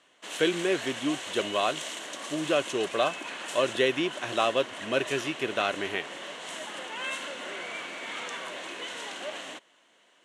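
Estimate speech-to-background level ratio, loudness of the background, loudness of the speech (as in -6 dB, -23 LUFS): 7.5 dB, -36.5 LUFS, -29.0 LUFS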